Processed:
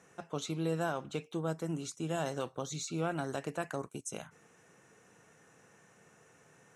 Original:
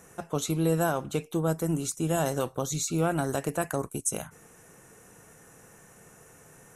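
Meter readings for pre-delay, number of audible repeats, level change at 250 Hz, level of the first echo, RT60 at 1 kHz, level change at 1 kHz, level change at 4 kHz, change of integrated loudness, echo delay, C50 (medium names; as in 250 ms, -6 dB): no reverb, no echo, -8.0 dB, no echo, no reverb, -7.0 dB, -5.0 dB, -8.0 dB, no echo, no reverb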